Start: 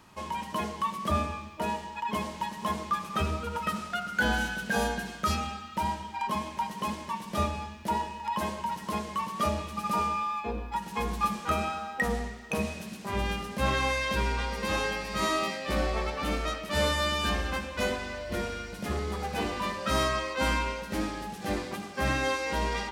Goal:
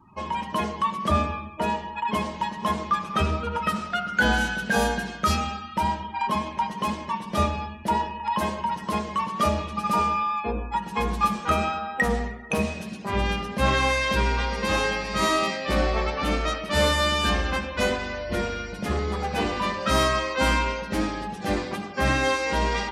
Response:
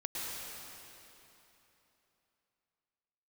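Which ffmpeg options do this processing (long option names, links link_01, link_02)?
-af "afftdn=noise_reduction=29:noise_floor=-52,volume=5.5dB"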